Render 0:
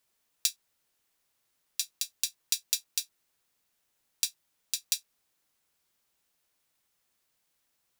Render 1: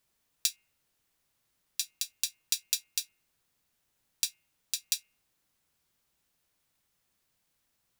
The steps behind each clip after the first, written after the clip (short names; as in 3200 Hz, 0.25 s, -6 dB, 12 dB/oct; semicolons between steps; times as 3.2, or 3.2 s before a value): tone controls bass +7 dB, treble -1 dB; de-hum 213.4 Hz, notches 15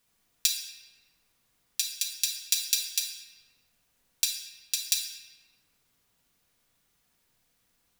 shoebox room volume 1400 m³, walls mixed, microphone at 1.8 m; gain +2.5 dB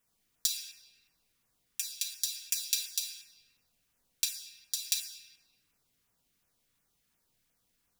LFO notch saw down 2.8 Hz 490–4700 Hz; gain -4 dB